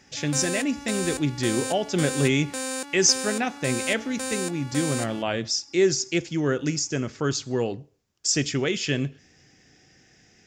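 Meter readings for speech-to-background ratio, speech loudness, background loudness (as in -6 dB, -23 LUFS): 6.0 dB, -25.5 LUFS, -31.5 LUFS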